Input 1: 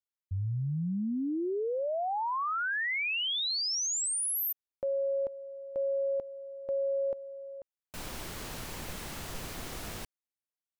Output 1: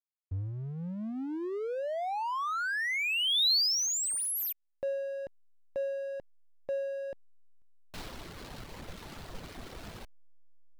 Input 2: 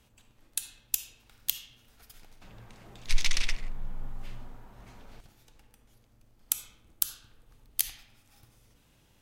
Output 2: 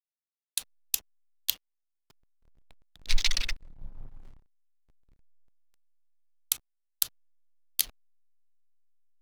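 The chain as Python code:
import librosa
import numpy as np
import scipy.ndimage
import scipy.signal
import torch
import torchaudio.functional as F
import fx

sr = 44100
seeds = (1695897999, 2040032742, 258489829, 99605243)

y = fx.dereverb_blind(x, sr, rt60_s=1.4)
y = fx.peak_eq(y, sr, hz=4100.0, db=7.0, octaves=0.79)
y = fx.backlash(y, sr, play_db=-36.5)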